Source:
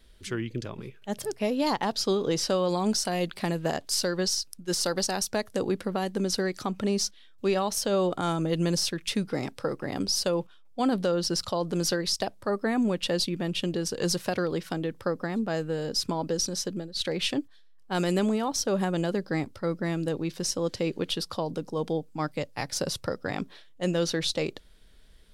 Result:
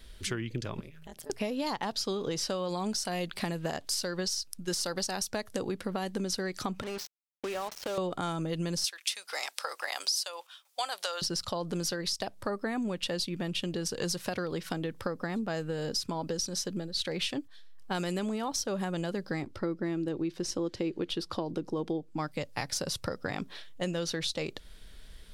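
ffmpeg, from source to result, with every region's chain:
ffmpeg -i in.wav -filter_complex "[0:a]asettb=1/sr,asplit=3[link_01][link_02][link_03];[link_01]atrim=end=0.804[link_04];[link_02]atrim=start=0.8:end=1.3,asetpts=PTS-STARTPTS,afade=type=in:duration=0.004:curve=qsin,afade=type=out:start_time=0.496:duration=0.004:curve=qsin,highshelf=frequency=9500:gain=6.5,acompressor=threshold=-44dB:ratio=12:attack=3.2:release=140:knee=1:detection=peak,tremolo=f=160:d=1[link_05];[link_03]atrim=start=1.296[link_06];[link_04][link_05]acrossfade=duration=0.004:curve1=hsin:curve2=qsin[link_07];[link_07][link_06]acrossfade=duration=0.004:curve1=qsin:curve2=hsin,asettb=1/sr,asplit=3[link_08][link_09][link_10];[link_08]atrim=end=6.824[link_11];[link_09]atrim=start=6.82:end=7.98,asetpts=PTS-STARTPTS,afade=type=in:duration=0.004:curve=qsin,afade=type=out:start_time=1.156:duration=0.004:curve=qsin,acompressor=threshold=-29dB:ratio=16:attack=3.2:release=140:knee=1:detection=peak,highpass=370,lowpass=2800,acrusher=bits=6:mix=0:aa=0.5[link_12];[link_10]atrim=start=7.976[link_13];[link_11][link_12]acrossfade=duration=0.004:curve1=hsin:curve2=qsin[link_14];[link_14][link_13]acrossfade=duration=0.004:curve1=qsin:curve2=hsin,asettb=1/sr,asplit=3[link_15][link_16][link_17];[link_15]atrim=end=8.844[link_18];[link_16]atrim=start=8.84:end=11.22,asetpts=PTS-STARTPTS,afade=type=in:duration=0.004:curve=qsin,afade=type=out:start_time=2.376:duration=0.004:curve=qsin,highpass=frequency=670:width=0.5412,highpass=frequency=670:width=1.3066,highshelf=frequency=2800:gain=11[link_19];[link_17]atrim=start=11.216[link_20];[link_18][link_19]acrossfade=duration=0.004:curve1=hsin:curve2=qsin[link_21];[link_21][link_20]acrossfade=duration=0.004:curve1=qsin:curve2=hsin,asettb=1/sr,asplit=3[link_22][link_23][link_24];[link_22]atrim=end=19.424[link_25];[link_23]atrim=start=19.42:end=22.18,asetpts=PTS-STARTPTS,afade=type=in:duration=0.004:curve=qsin,afade=type=out:start_time=2.756:duration=0.004:curve=qsin,lowpass=frequency=3900:poles=1,equalizer=frequency=340:width_type=o:width=0.38:gain=10.5[link_26];[link_24]atrim=start=22.176[link_27];[link_25][link_26]acrossfade=duration=0.004:curve1=hsin:curve2=qsin[link_28];[link_28][link_27]acrossfade=duration=0.004:curve1=qsin:curve2=hsin,equalizer=frequency=350:width_type=o:width=2.4:gain=-3.5,acompressor=threshold=-38dB:ratio=5,volume=7dB" out.wav

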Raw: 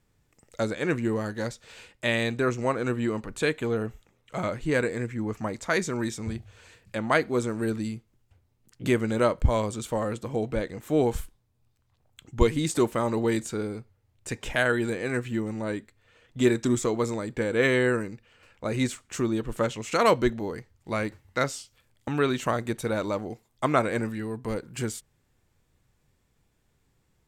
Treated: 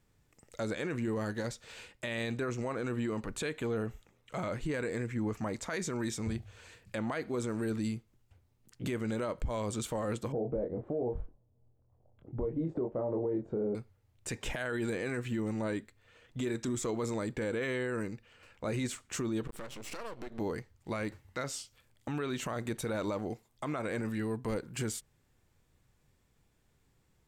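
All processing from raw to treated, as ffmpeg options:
ffmpeg -i in.wav -filter_complex "[0:a]asettb=1/sr,asplit=3[link_01][link_02][link_03];[link_01]atrim=end=10.324[link_04];[link_02]atrim=start=10.32:end=13.75,asetpts=PTS-STARTPTS,afade=type=in:duration=0.004:curve=qsin,afade=type=out:start_time=3.426:duration=0.004:curve=qsin,lowpass=frequency=590:width_type=q:width=2,asplit=2[link_05][link_06];[link_06]adelay=24,volume=-4.5dB[link_07];[link_05][link_07]amix=inputs=2:normalize=0,atrim=end_sample=151263[link_08];[link_03]atrim=start=13.746[link_09];[link_04][link_08]acrossfade=duration=0.004:curve1=hsin:curve2=qsin[link_10];[link_10][link_09]acrossfade=duration=0.004:curve1=qsin:curve2=hsin,asettb=1/sr,asplit=3[link_11][link_12][link_13];[link_11]atrim=end=19.474[link_14];[link_12]atrim=start=19.47:end=20.39,asetpts=PTS-STARTPTS,afade=type=in:duration=0.004:curve=qsin,afade=type=out:start_time=0.916:duration=0.004:curve=qsin,bandreject=frequency=6600:width=8.8,acompressor=threshold=-33dB:ratio=10:attack=3.2:release=140:knee=1:detection=peak,aeval=exprs='max(val(0),0)':channel_layout=same[link_15];[link_13]atrim=start=20.386[link_16];[link_14][link_15]acrossfade=duration=0.004:curve1=hsin:curve2=qsin[link_17];[link_17][link_16]acrossfade=duration=0.004:curve1=qsin:curve2=hsin,acompressor=threshold=-25dB:ratio=6,alimiter=level_in=0.5dB:limit=-24dB:level=0:latency=1:release=23,volume=-0.5dB,volume=-1.5dB" out.wav

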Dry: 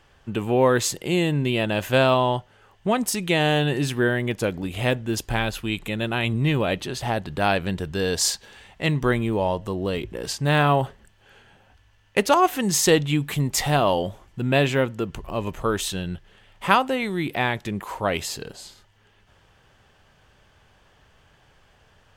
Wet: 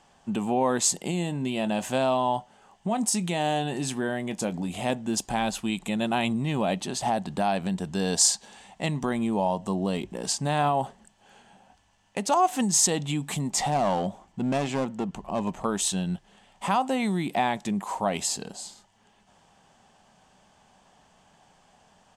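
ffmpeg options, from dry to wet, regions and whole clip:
ffmpeg -i in.wav -filter_complex "[0:a]asettb=1/sr,asplit=3[link_01][link_02][link_03];[link_01]atrim=end=1.114[link_04];[link_02]atrim=start=1.11:end=4.9,asetpts=PTS-STARTPTS,afade=type=in:duration=0.004:curve=qsin,afade=type=out:start_time=3.786:duration=0.004:curve=qsin,acompressor=threshold=-29dB:ratio=1.5:attack=3.2:release=140:knee=1:detection=peak,asplit=2[link_05][link_06];[link_06]adelay=23,volume=-14dB[link_07];[link_05][link_07]amix=inputs=2:normalize=0,atrim=end_sample=167139[link_08];[link_03]atrim=start=4.896[link_09];[link_04][link_08]acrossfade=duration=0.004:curve1=hsin:curve2=qsin[link_10];[link_10][link_09]acrossfade=duration=0.004:curve1=qsin:curve2=hsin,asettb=1/sr,asplit=3[link_11][link_12][link_13];[link_11]atrim=end=13.514[link_14];[link_12]atrim=start=13.51:end=15.65,asetpts=PTS-STARTPTS,afade=type=in:duration=0.004:curve=qsin,afade=type=out:start_time=2.136:duration=0.004:curve=qsin,highshelf=frequency=5600:gain=-9.5,aeval=exprs='clip(val(0),-1,0.0708)':channel_layout=same[link_15];[link_13]atrim=start=15.646[link_16];[link_14][link_15]acrossfade=duration=0.004:curve1=hsin:curve2=qsin[link_17];[link_17][link_16]acrossfade=duration=0.004:curve1=qsin:curve2=hsin,firequalizer=gain_entry='entry(110,0);entry(190,14);entry(320,0);entry(480,-4);entry(740,6);entry(1400,-6);entry(4600,-3);entry(7900,3);entry(15000,-19)':delay=0.05:min_phase=1,alimiter=limit=-13dB:level=0:latency=1:release=155,bass=frequency=250:gain=-12,treble=frequency=4000:gain=4" out.wav

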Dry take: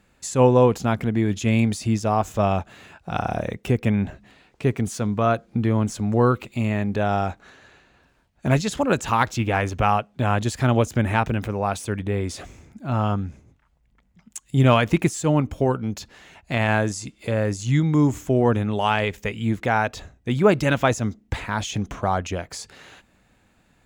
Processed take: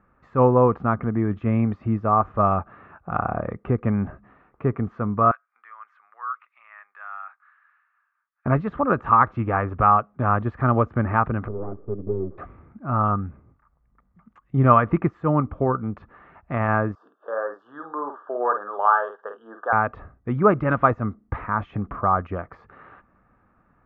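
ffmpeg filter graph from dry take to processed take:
ffmpeg -i in.wav -filter_complex "[0:a]asettb=1/sr,asplit=3[link_01][link_02][link_03];[link_01]atrim=end=5.314[link_04];[link_02]atrim=start=5.31:end=8.46,asetpts=PTS-STARTPTS,afade=type=in:duration=0.004:curve=qsin,afade=type=out:start_time=3.146:duration=0.004:curve=qsin,highpass=frequency=1500:width=0.5412,highpass=frequency=1500:width=1.3066,equalizer=frequency=4600:width_type=o:width=2.6:gain=-8.5[link_05];[link_03]atrim=start=8.456[link_06];[link_04][link_05]acrossfade=duration=0.004:curve1=hsin:curve2=qsin[link_07];[link_07][link_06]acrossfade=duration=0.004:curve1=qsin:curve2=hsin,asettb=1/sr,asplit=3[link_08][link_09][link_10];[link_08]atrim=end=11.484[link_11];[link_09]atrim=start=11.48:end=12.38,asetpts=PTS-STARTPTS,afade=type=in:duration=0.004:curve=qsin,afade=type=out:start_time=0.896:duration=0.004:curve=qsin,aeval=exprs='max(val(0),0)':channel_layout=same,lowpass=frequency=400:width_type=q:width=4.4[link_12];[link_10]atrim=start=12.376[link_13];[link_11][link_12]acrossfade=duration=0.004:curve1=hsin:curve2=qsin[link_14];[link_14][link_13]acrossfade=duration=0.004:curve1=qsin:curve2=hsin,asettb=1/sr,asplit=3[link_15][link_16][link_17];[link_15]atrim=end=16.954[link_18];[link_16]atrim=start=16.95:end=19.73,asetpts=PTS-STARTPTS,afade=type=in:duration=0.004:curve=qsin,afade=type=out:start_time=2.776:duration=0.004:curve=qsin,asuperstop=centerf=2200:order=8:qfactor=1.7,highpass=frequency=490:width=0.5412,highpass=frequency=490:width=1.3066,equalizer=frequency=1700:width_type=q:width=4:gain=8,equalizer=frequency=2800:width_type=q:width=4:gain=-6,equalizer=frequency=4200:width_type=q:width=4:gain=-9,equalizer=frequency=6500:width_type=q:width=4:gain=-9,lowpass=frequency=7800:width=0.5412,lowpass=frequency=7800:width=1.3066,asplit=2[link_19][link_20];[link_20]adelay=49,volume=-7dB[link_21];[link_19][link_21]amix=inputs=2:normalize=0,atrim=end_sample=122598[link_22];[link_17]atrim=start=19.726[link_23];[link_18][link_22]acrossfade=duration=0.004:curve1=hsin:curve2=qsin[link_24];[link_24][link_23]acrossfade=duration=0.004:curve1=qsin:curve2=hsin,lowpass=frequency=1700:width=0.5412,lowpass=frequency=1700:width=1.3066,equalizer=frequency=1200:width=5.5:gain=14.5,volume=-1.5dB" out.wav

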